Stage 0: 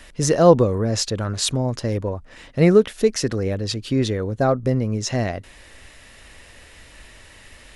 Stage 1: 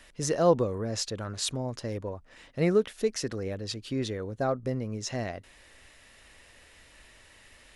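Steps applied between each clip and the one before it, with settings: low shelf 240 Hz -4.5 dB; gain -8.5 dB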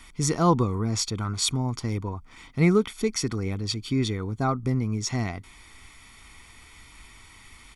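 comb 0.9 ms, depth 84%; gain +3.5 dB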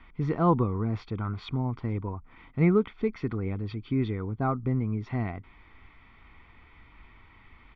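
Bessel low-pass 1900 Hz, order 6; gain -2 dB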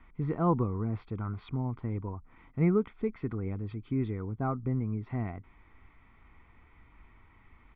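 air absorption 400 m; gain -3 dB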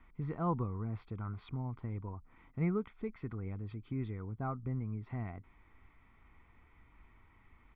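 dynamic EQ 340 Hz, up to -5 dB, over -40 dBFS, Q 0.81; gain -4.5 dB

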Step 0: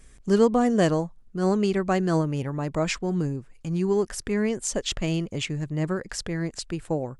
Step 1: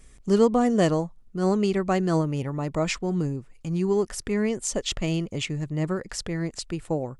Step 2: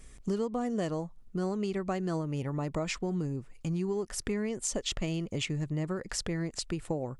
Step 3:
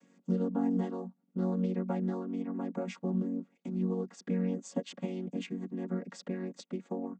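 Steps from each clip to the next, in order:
notch 1600 Hz, Q 11
compressor 6:1, threshold -29 dBFS, peak gain reduction 14.5 dB
chord vocoder major triad, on F#3

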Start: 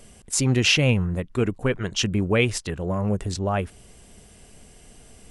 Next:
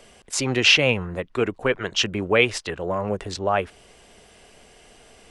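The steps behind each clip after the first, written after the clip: three-band isolator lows -13 dB, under 360 Hz, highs -12 dB, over 5300 Hz; gain +5 dB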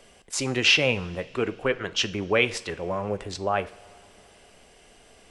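two-slope reverb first 0.43 s, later 3.3 s, from -18 dB, DRR 12 dB; gain -3.5 dB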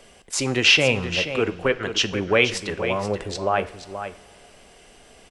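echo 0.479 s -10 dB; gain +3.5 dB

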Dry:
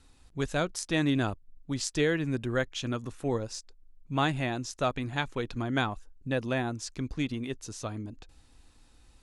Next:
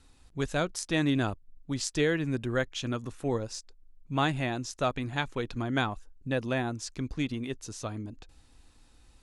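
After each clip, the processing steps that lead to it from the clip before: nothing audible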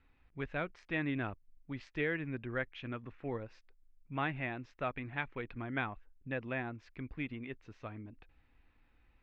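ladder low-pass 2600 Hz, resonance 50%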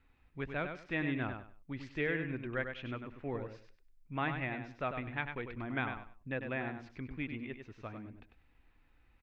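feedback echo 98 ms, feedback 23%, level -7 dB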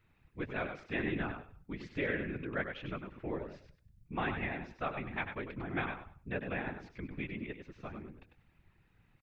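outdoor echo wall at 34 m, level -27 dB; whisperiser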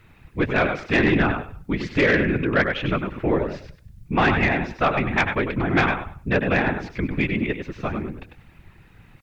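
sine folder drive 5 dB, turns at -20.5 dBFS; gain +9 dB

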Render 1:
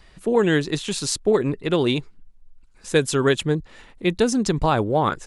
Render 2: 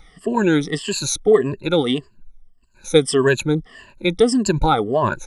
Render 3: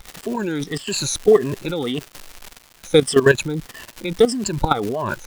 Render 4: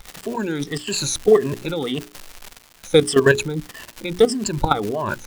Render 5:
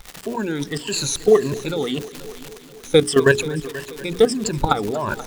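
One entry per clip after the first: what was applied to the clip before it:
moving spectral ripple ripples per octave 1.4, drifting -1.7 Hz, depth 21 dB; gain -2 dB
crackle 410/s -26 dBFS; level quantiser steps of 14 dB; gain +4.5 dB
notches 60/120/180/240/300/360/420 Hz
multi-head echo 0.241 s, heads first and second, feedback 56%, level -20 dB

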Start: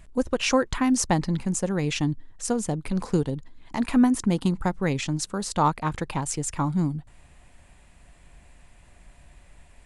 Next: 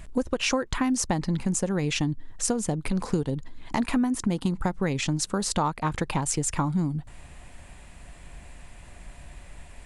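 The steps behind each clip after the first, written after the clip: compressor 5:1, threshold -30 dBFS, peak gain reduction 14 dB; gain +7 dB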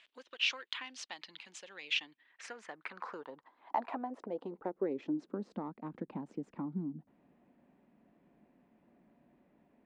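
added harmonics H 2 -13 dB, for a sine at -10.5 dBFS; band-pass sweep 3200 Hz -> 220 Hz, 1.82–5.6; three-band isolator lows -22 dB, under 240 Hz, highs -16 dB, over 5400 Hz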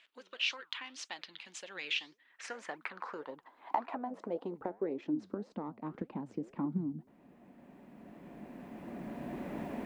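recorder AGC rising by 9.5 dB/s; flange 1.8 Hz, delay 2.7 ms, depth 8.3 ms, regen +84%; gain +3 dB

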